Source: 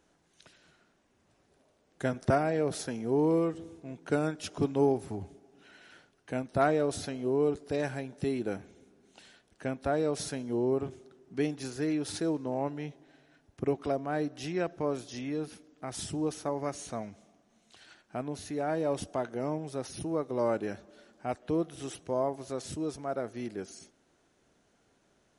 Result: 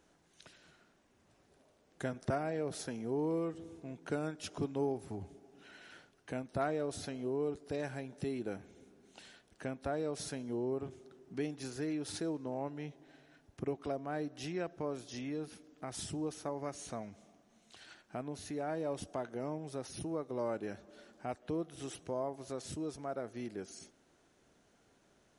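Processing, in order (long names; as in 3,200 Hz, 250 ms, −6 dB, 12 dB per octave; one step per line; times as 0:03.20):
downward compressor 1.5 to 1, threshold −46 dBFS, peak gain reduction 9 dB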